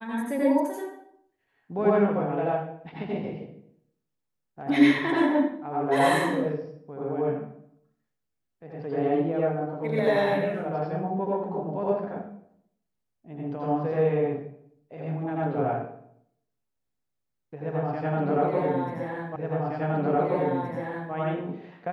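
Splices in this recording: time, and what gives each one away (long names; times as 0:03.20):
0:19.36: the same again, the last 1.77 s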